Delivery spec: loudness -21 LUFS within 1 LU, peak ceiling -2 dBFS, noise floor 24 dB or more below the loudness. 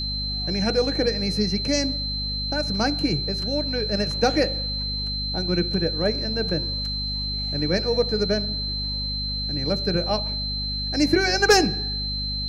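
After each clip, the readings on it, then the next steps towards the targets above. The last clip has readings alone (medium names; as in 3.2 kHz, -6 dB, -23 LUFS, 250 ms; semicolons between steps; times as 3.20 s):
hum 50 Hz; highest harmonic 250 Hz; hum level -29 dBFS; steady tone 4.1 kHz; tone level -27 dBFS; loudness -23.5 LUFS; peak level -7.0 dBFS; loudness target -21.0 LUFS
-> hum notches 50/100/150/200/250 Hz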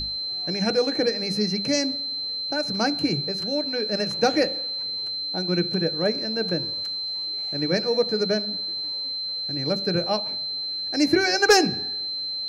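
hum not found; steady tone 4.1 kHz; tone level -27 dBFS
-> band-stop 4.1 kHz, Q 30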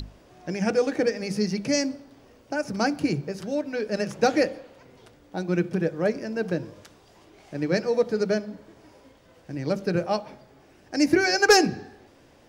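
steady tone not found; loudness -25.0 LUFS; peak level -7.5 dBFS; loudness target -21.0 LUFS
-> trim +4 dB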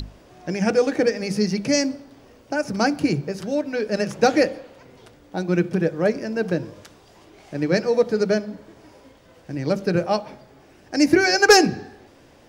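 loudness -21.0 LUFS; peak level -3.5 dBFS; noise floor -52 dBFS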